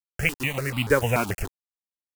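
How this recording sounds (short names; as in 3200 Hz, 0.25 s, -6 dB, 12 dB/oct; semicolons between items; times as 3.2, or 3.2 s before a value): a quantiser's noise floor 6-bit, dither none; notches that jump at a steady rate 6.9 Hz 510–1700 Hz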